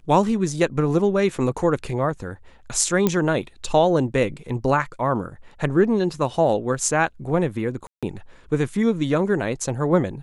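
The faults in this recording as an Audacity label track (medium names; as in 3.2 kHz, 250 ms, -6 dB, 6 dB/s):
3.070000	3.070000	pop -6 dBFS
7.870000	8.030000	dropout 156 ms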